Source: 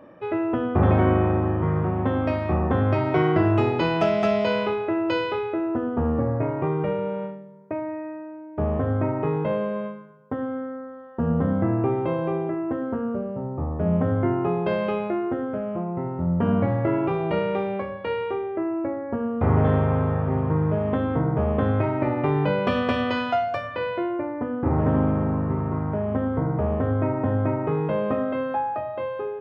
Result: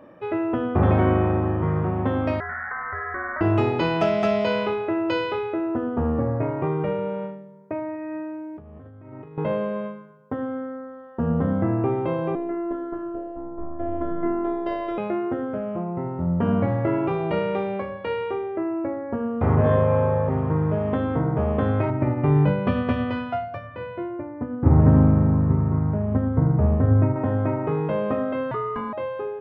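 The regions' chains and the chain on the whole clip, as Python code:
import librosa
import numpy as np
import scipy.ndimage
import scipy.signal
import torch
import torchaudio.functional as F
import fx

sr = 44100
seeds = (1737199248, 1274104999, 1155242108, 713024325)

y = fx.chain(x, sr, fx.highpass(hz=1000.0, slope=24),
    fx.freq_invert(carrier_hz=2600),
    fx.env_flatten(amount_pct=70), at=(2.4, 3.41))
y = fx.chain(y, sr, fx.highpass(hz=42.0, slope=12),
    fx.peak_eq(hz=740.0, db=-5.5, octaves=2.0),
    fx.over_compress(threshold_db=-38.0, ratio=-1.0), at=(7.95, 9.38))
y = fx.chain(y, sr, fx.peak_eq(hz=2500.0, db=-11.5, octaves=0.21),
    fx.robotise(hz=342.0), at=(12.35, 14.98))
y = fx.chain(y, sr, fx.high_shelf(hz=2400.0, db=-9.5),
    fx.room_flutter(wall_m=3.6, rt60_s=0.54), at=(19.55, 20.29))
y = fx.chain(y, sr, fx.bass_treble(bass_db=10, treble_db=-14),
    fx.upward_expand(threshold_db=-27.0, expansion=1.5), at=(21.9, 27.16))
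y = fx.chain(y, sr, fx.ring_mod(carrier_hz=400.0),
    fx.env_flatten(amount_pct=50), at=(28.51, 28.93))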